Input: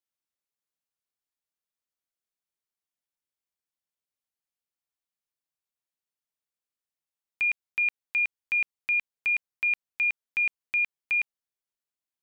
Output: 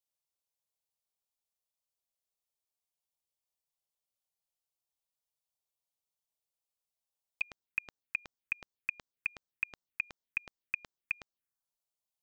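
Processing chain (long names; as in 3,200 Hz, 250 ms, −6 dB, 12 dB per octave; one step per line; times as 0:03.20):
phaser swept by the level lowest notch 280 Hz, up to 2,400 Hz, full sweep at −28 dBFS
level +1 dB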